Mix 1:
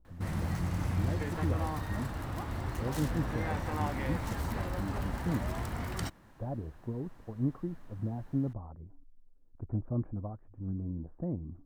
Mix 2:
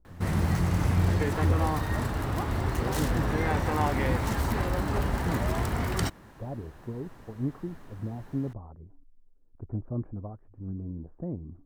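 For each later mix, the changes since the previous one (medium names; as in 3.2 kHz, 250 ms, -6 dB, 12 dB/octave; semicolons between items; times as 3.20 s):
background +7.5 dB; master: add peaking EQ 410 Hz +5.5 dB 0.25 oct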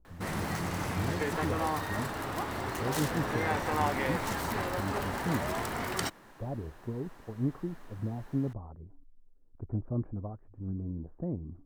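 background: add high-pass 410 Hz 6 dB/octave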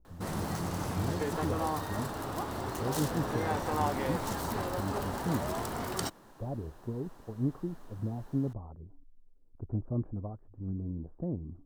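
master: add peaking EQ 2.1 kHz -9 dB 1 oct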